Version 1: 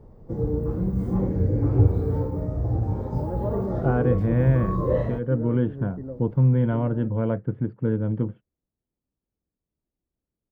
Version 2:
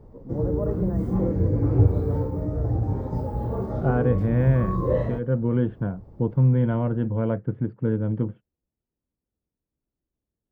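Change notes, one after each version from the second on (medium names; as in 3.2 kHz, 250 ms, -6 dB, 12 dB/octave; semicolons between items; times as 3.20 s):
first voice: entry -2.85 s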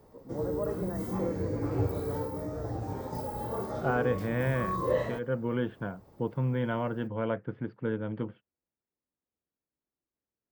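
master: add tilt EQ +4 dB/octave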